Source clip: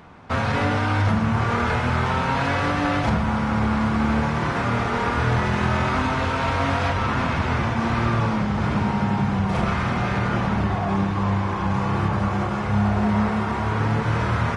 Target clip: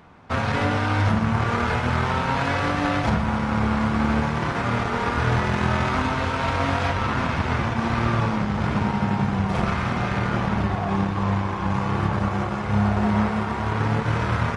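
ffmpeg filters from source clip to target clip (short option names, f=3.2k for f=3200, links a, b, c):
-af "aeval=exprs='0.376*(cos(1*acos(clip(val(0)/0.376,-1,1)))-cos(1*PI/2))+0.0188*(cos(7*acos(clip(val(0)/0.376,-1,1)))-cos(7*PI/2))':c=same"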